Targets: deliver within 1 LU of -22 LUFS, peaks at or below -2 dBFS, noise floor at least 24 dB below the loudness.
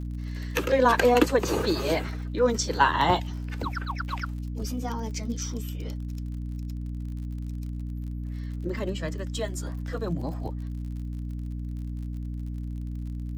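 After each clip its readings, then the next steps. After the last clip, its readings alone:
tick rate 48 per s; hum 60 Hz; highest harmonic 300 Hz; hum level -30 dBFS; loudness -29.0 LUFS; peak level -6.0 dBFS; loudness target -22.0 LUFS
-> de-click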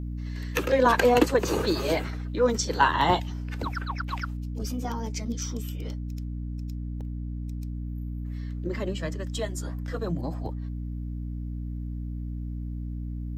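tick rate 0.67 per s; hum 60 Hz; highest harmonic 300 Hz; hum level -30 dBFS
-> hum notches 60/120/180/240/300 Hz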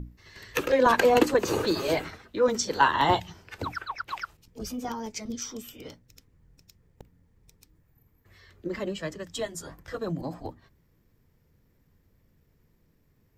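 hum not found; loudness -27.5 LUFS; peak level -6.5 dBFS; loudness target -22.0 LUFS
-> trim +5.5 dB; peak limiter -2 dBFS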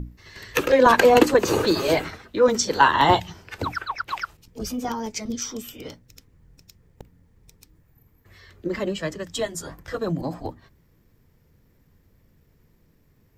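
loudness -22.0 LUFS; peak level -2.0 dBFS; noise floor -61 dBFS

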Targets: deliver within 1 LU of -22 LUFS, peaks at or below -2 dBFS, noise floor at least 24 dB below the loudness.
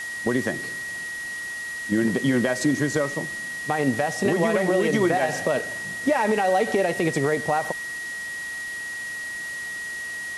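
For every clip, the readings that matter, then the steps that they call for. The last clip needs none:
steady tone 1.9 kHz; tone level -30 dBFS; noise floor -33 dBFS; noise floor target -49 dBFS; loudness -24.5 LUFS; peak level -9.5 dBFS; loudness target -22.0 LUFS
-> band-stop 1.9 kHz, Q 30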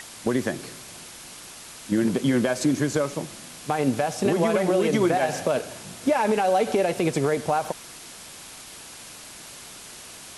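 steady tone not found; noise floor -43 dBFS; noise floor target -48 dBFS
-> noise reduction 6 dB, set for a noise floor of -43 dBFS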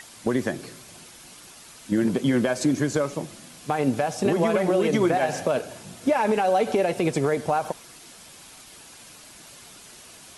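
noise floor -47 dBFS; noise floor target -48 dBFS
-> noise reduction 6 dB, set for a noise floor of -47 dBFS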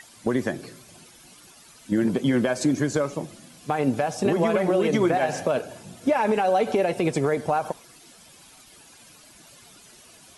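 noise floor -51 dBFS; loudness -24.0 LUFS; peak level -11.0 dBFS; loudness target -22.0 LUFS
-> trim +2 dB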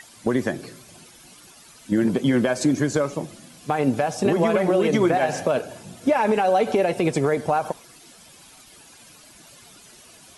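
loudness -22.0 LUFS; peak level -9.0 dBFS; noise floor -49 dBFS

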